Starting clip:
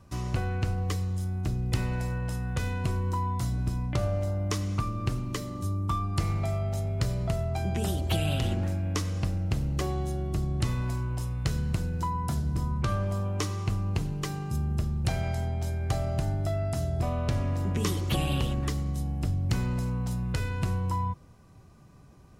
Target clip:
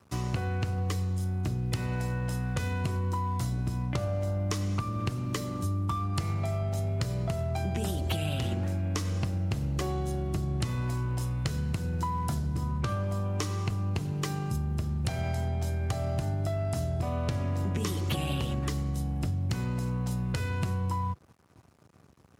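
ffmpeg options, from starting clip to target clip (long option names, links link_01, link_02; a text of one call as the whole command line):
ffmpeg -i in.wav -af "aeval=exprs='sgn(val(0))*max(abs(val(0))-0.00211,0)':channel_layout=same,highpass=frequency=66:width=0.5412,highpass=frequency=66:width=1.3066,acompressor=threshold=-30dB:ratio=6,volume=3.5dB" out.wav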